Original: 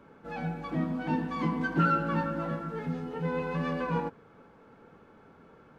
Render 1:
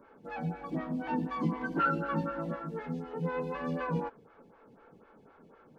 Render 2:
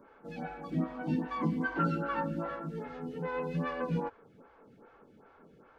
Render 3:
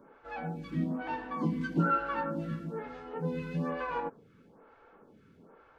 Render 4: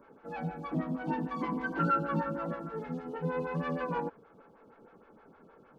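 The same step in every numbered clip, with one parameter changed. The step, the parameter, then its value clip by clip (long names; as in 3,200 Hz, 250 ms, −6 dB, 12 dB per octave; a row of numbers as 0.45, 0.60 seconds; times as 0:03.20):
phaser with staggered stages, speed: 4, 2.5, 1.1, 6.4 Hertz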